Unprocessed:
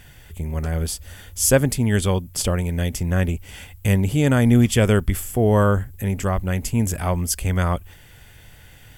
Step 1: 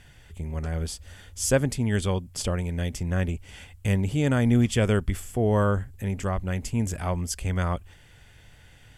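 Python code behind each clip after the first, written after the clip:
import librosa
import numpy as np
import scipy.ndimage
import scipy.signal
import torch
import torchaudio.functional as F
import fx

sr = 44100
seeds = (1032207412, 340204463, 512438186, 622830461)

y = scipy.signal.sosfilt(scipy.signal.butter(2, 8500.0, 'lowpass', fs=sr, output='sos'), x)
y = y * 10.0 ** (-5.5 / 20.0)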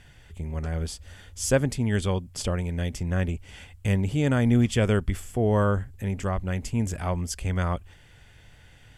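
y = fx.high_shelf(x, sr, hz=9200.0, db=-5.5)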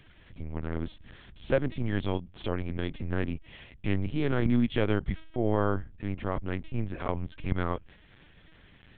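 y = fx.lpc_vocoder(x, sr, seeds[0], excitation='pitch_kept', order=8)
y = y * 10.0 ** (-4.0 / 20.0)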